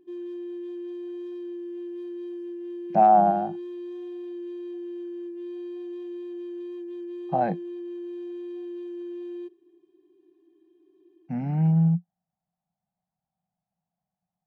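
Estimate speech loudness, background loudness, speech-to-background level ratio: -22.5 LUFS, -36.5 LUFS, 14.0 dB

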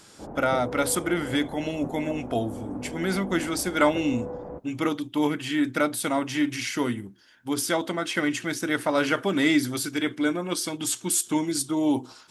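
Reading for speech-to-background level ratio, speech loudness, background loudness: 11.0 dB, -26.5 LUFS, -37.5 LUFS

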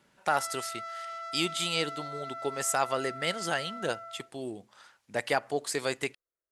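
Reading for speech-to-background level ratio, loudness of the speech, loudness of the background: 8.0 dB, -32.0 LUFS, -40.0 LUFS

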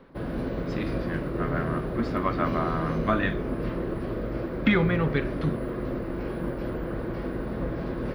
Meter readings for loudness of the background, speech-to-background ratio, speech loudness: -31.5 LUFS, 2.5 dB, -29.0 LUFS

